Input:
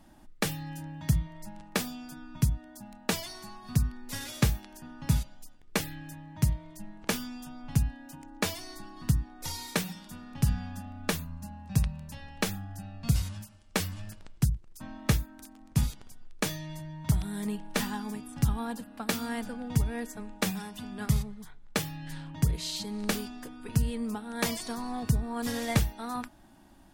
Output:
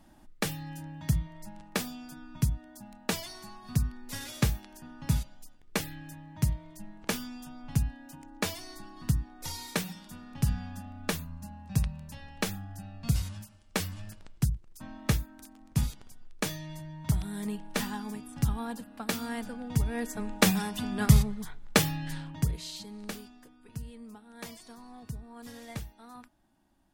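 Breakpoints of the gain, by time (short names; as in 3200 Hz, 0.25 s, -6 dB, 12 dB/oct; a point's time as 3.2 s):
19.75 s -1.5 dB
20.31 s +7 dB
21.9 s +7 dB
22.64 s -5.5 dB
23.61 s -13.5 dB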